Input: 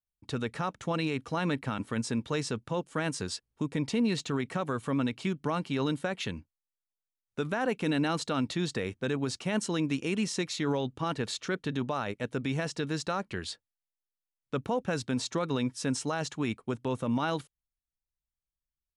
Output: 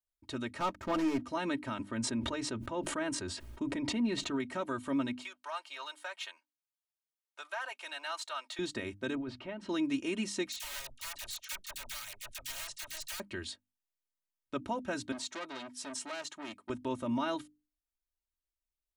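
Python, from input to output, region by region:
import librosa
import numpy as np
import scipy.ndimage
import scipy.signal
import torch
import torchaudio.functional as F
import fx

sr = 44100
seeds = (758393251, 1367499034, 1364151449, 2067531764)

y = fx.chain(x, sr, fx.median_filter(points=15),
    fx.lowpass(hz=8200.0, slope=12),
    fx.leveller(passes=2), at=(0.6, 1.25))
y = fx.chain(y, sr, fx.high_shelf(hz=3500.0, db=-10.0),
    fx.sustainer(db_per_s=41.0), at=(1.83, 4.4))
y = fx.chain(y, sr, fx.halfwave_gain(db=-3.0),
    fx.highpass(hz=740.0, slope=24),
    fx.notch(hz=2000.0, q=17.0), at=(5.22, 8.59))
y = fx.chain(y, sr, fx.air_absorb(metres=380.0),
    fx.hum_notches(base_hz=60, count=3),
    fx.over_compress(threshold_db=-35.0, ratio=-1.0), at=(9.15, 9.69))
y = fx.chain(y, sr, fx.overflow_wrap(gain_db=27.0),
    fx.tone_stack(knobs='10-0-10'),
    fx.dispersion(late='lows', ms=43.0, hz=1100.0), at=(10.52, 13.2))
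y = fx.chain(y, sr, fx.highpass(hz=440.0, slope=6),
    fx.transformer_sat(knee_hz=2500.0), at=(15.12, 16.7))
y = fx.hum_notches(y, sr, base_hz=50, count=6)
y = fx.dynamic_eq(y, sr, hz=5000.0, q=3.8, threshold_db=-52.0, ratio=4.0, max_db=-3)
y = y + 0.83 * np.pad(y, (int(3.2 * sr / 1000.0), 0))[:len(y)]
y = F.gain(torch.from_numpy(y), -5.5).numpy()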